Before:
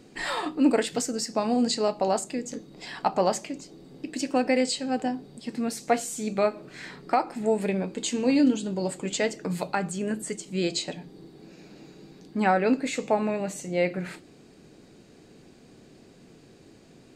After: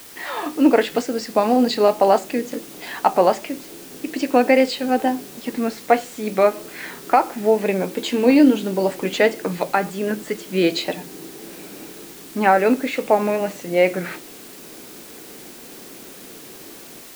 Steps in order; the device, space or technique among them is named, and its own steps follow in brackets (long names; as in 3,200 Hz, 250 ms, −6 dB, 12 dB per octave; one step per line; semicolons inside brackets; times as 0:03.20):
dictaphone (band-pass filter 260–3,100 Hz; automatic gain control gain up to 11.5 dB; tape wow and flutter; white noise bed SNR 21 dB)